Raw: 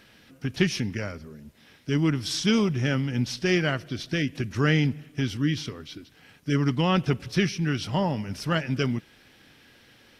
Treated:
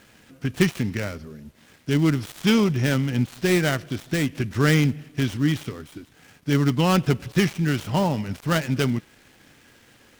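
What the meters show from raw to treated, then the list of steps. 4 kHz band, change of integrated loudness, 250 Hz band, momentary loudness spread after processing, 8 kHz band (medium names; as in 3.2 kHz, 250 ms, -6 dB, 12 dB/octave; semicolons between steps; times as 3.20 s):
+0.5 dB, +3.0 dB, +3.5 dB, 12 LU, +3.0 dB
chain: dead-time distortion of 0.11 ms; trim +3.5 dB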